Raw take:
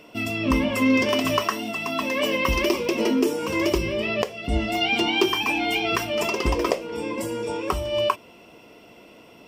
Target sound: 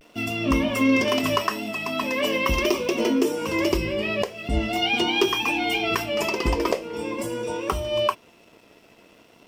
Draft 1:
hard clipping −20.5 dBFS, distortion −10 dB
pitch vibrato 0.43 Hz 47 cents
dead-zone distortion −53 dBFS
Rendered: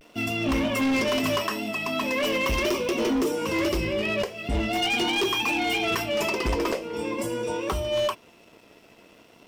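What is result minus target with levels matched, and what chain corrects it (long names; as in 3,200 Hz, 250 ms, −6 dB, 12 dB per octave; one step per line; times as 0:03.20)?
hard clipping: distortion +20 dB
hard clipping −9.5 dBFS, distortion −30 dB
pitch vibrato 0.43 Hz 47 cents
dead-zone distortion −53 dBFS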